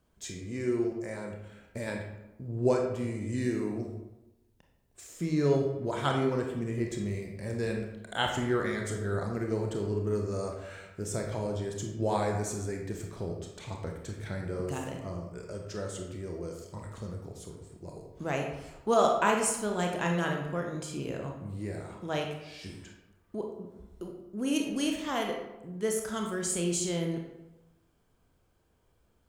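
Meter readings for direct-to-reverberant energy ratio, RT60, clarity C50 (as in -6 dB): 1.0 dB, 1.0 s, 4.0 dB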